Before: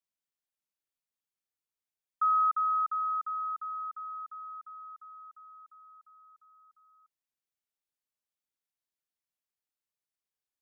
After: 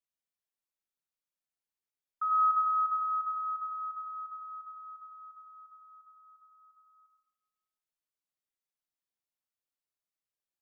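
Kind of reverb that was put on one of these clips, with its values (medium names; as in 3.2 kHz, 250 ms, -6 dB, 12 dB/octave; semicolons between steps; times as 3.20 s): algorithmic reverb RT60 1.2 s, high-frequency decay 0.4×, pre-delay 50 ms, DRR 3 dB; trim -5 dB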